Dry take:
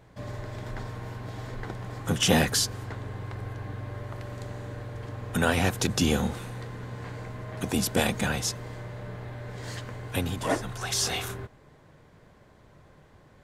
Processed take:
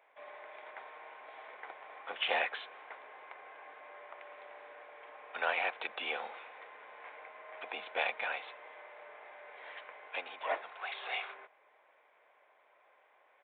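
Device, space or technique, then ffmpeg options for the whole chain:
musical greeting card: -af "tiltshelf=f=970:g=7,aresample=8000,aresample=44100,highpass=f=680:w=0.5412,highpass=f=680:w=1.3066,equalizer=f=2.3k:t=o:w=0.43:g=11,volume=-5dB"

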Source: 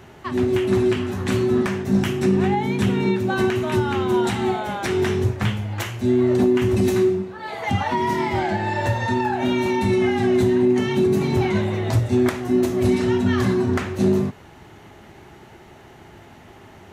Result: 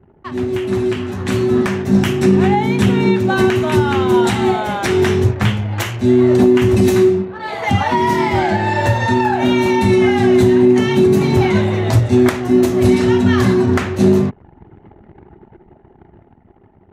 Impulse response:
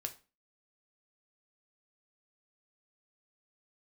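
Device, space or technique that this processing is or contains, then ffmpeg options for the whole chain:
voice memo with heavy noise removal: -af "anlmdn=0.398,dynaudnorm=f=310:g=9:m=9dB"

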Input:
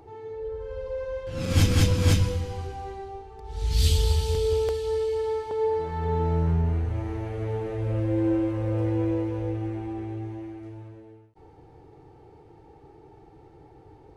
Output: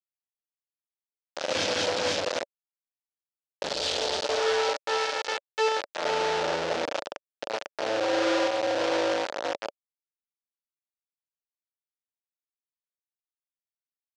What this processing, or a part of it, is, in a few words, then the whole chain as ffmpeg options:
hand-held game console: -af "acrusher=bits=3:mix=0:aa=0.000001,highpass=490,equalizer=f=570:t=q:w=4:g=9,equalizer=f=1.1k:t=q:w=4:g=-5,equalizer=f=2.1k:t=q:w=4:g=-3,lowpass=f=5.8k:w=0.5412,lowpass=f=5.8k:w=1.3066"

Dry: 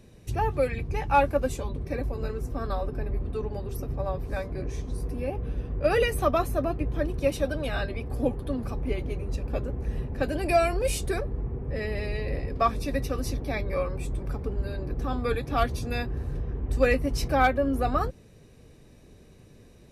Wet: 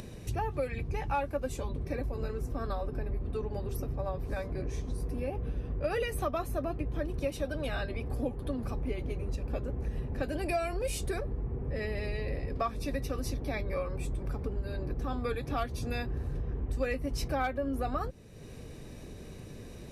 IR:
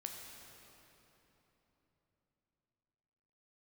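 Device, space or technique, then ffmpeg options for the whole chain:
upward and downward compression: -af "acompressor=mode=upward:threshold=-36dB:ratio=2.5,acompressor=threshold=-31dB:ratio=3"

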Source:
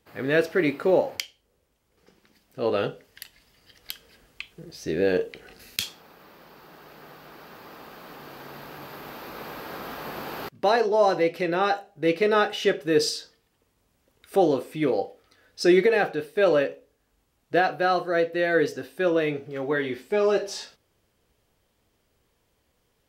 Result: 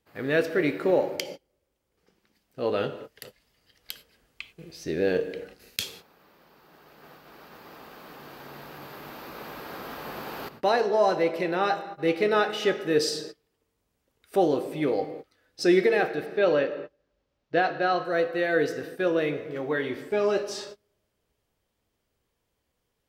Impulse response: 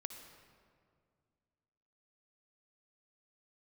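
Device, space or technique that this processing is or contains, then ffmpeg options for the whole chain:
keyed gated reverb: -filter_complex "[0:a]asettb=1/sr,asplit=3[a][b][c];[a]atrim=end=16.264[d];[b]atrim=start=16.26:end=18.05,asetpts=PTS-STARTPTS,afade=t=in:d=0.004:c=qsin,afade=t=out:st=1.786:d=0.004:c=qsin,lowpass=f=5.7k:w=0.5412,lowpass=f=5.7k:w=1.3066[e];[c]atrim=start=18.046[f];[d][e]acrossfade=d=0.004:c1=hsin:c2=qsin[g];[g][f]acrossfade=d=0.004:c1=qsin:c2=hsin,asplit=3[h][i][j];[1:a]atrim=start_sample=2205[k];[i][k]afir=irnorm=-1:irlink=0[l];[j]apad=whole_len=1018197[m];[l][m]sidechaingate=range=-33dB:threshold=-46dB:ratio=16:detection=peak,volume=3.5dB[n];[h][n]amix=inputs=2:normalize=0,volume=-8dB"

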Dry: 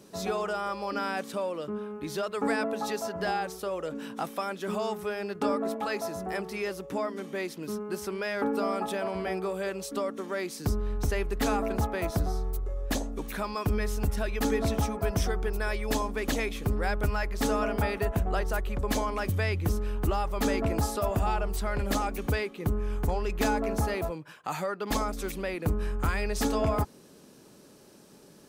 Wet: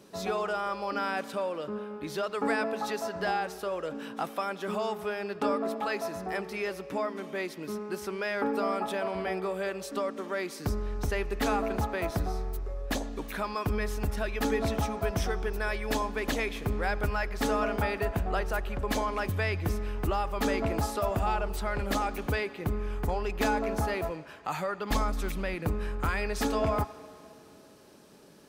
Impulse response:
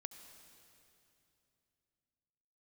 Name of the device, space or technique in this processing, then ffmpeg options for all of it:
filtered reverb send: -filter_complex "[0:a]asplit=2[a][b];[b]highpass=f=590:p=1,lowpass=4.9k[c];[1:a]atrim=start_sample=2205[d];[c][d]afir=irnorm=-1:irlink=0,volume=1dB[e];[a][e]amix=inputs=2:normalize=0,asettb=1/sr,asplit=3[f][g][h];[f]atrim=end=24.274[i];[g]atrim=start=24.27:end=25.66,asetpts=PTS-STARTPTS,afade=t=in:d=0.004:c=qsin,afade=t=out:st=1.386:d=0.004:c=qsin,asubboost=boost=7:cutoff=200[j];[h]atrim=start=25.656[k];[i][j]acrossfade=d=0.004:c1=hsin:c2=qsin[l];[l][k]acrossfade=d=0.004:c1=qsin:c2=hsin,volume=-3dB"

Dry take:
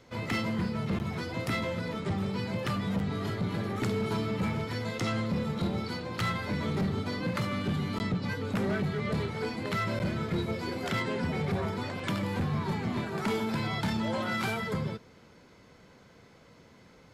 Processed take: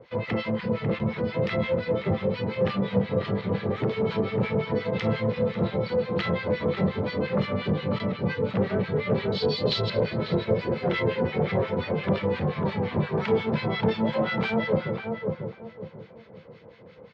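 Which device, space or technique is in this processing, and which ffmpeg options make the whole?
guitar amplifier with harmonic tremolo: -filter_complex "[0:a]asettb=1/sr,asplit=3[a][b][c];[a]atrim=end=9.324[d];[b]atrim=start=9.32:end=9.9,asetpts=PTS-STARTPTS,afade=t=in:d=0.004:c=qsin,afade=t=out:st=0.576:d=0.004:c=qsin,highshelf=f=2.9k:t=q:w=3:g=12.5[e];[c]atrim=start=9.896[f];[d][e]acrossfade=d=0.004:c1=hsin:c2=qsin[g];[g][f]acrossfade=d=0.004:c1=qsin:c2=hsin,acrossover=split=1200[h][i];[h]aeval=exprs='val(0)*(1-1/2+1/2*cos(2*PI*5.7*n/s))':c=same[j];[i]aeval=exprs='val(0)*(1-1/2-1/2*cos(2*PI*5.7*n/s))':c=same[k];[j][k]amix=inputs=2:normalize=0,asoftclip=type=tanh:threshold=-25dB,highpass=77,equalizer=f=77:t=q:w=4:g=-4,equalizer=f=270:t=q:w=4:g=-6,equalizer=f=500:t=q:w=4:g=9,equalizer=f=1.4k:t=q:w=4:g=-4,lowpass=f=3.8k:w=0.5412,lowpass=f=3.8k:w=1.3066,asplit=2[l][m];[m]adelay=545,lowpass=f=1.1k:p=1,volume=-3dB,asplit=2[n][o];[o]adelay=545,lowpass=f=1.1k:p=1,volume=0.32,asplit=2[p][q];[q]adelay=545,lowpass=f=1.1k:p=1,volume=0.32,asplit=2[r][s];[s]adelay=545,lowpass=f=1.1k:p=1,volume=0.32[t];[l][n][p][r][t]amix=inputs=5:normalize=0,volume=8.5dB"

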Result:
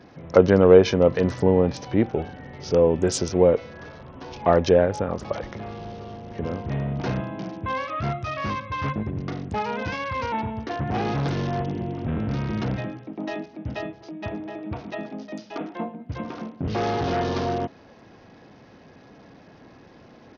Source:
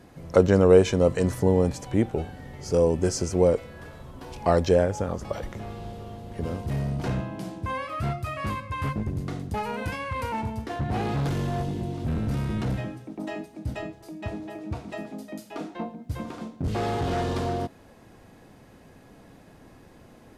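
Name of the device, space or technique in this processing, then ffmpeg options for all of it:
Bluetooth headset: -af "highpass=f=130:p=1,aresample=16000,aresample=44100,volume=3.5dB" -ar 48000 -c:a sbc -b:a 64k

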